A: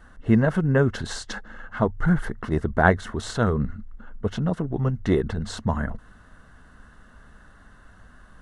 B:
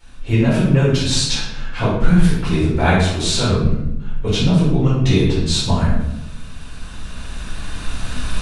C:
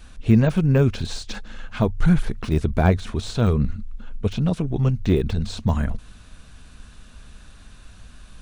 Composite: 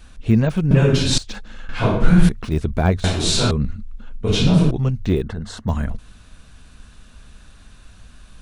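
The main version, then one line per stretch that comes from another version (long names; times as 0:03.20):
C
0:00.71–0:01.18: punch in from B
0:01.69–0:02.29: punch in from B
0:03.04–0:03.51: punch in from B
0:04.26–0:04.71: punch in from B
0:05.23–0:05.68: punch in from A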